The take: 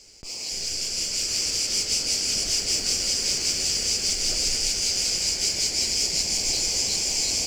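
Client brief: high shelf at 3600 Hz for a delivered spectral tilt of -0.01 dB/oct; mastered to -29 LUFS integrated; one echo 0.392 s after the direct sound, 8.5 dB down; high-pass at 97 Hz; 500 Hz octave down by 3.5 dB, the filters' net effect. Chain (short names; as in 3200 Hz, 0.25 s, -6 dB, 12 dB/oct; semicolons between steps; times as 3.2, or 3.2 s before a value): HPF 97 Hz; bell 500 Hz -4.5 dB; high shelf 3600 Hz +5.5 dB; echo 0.392 s -8.5 dB; gain -11 dB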